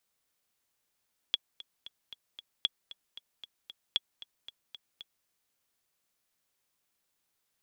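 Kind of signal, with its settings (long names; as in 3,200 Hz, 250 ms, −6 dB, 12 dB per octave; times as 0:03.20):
click track 229 BPM, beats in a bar 5, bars 3, 3,360 Hz, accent 18 dB −13.5 dBFS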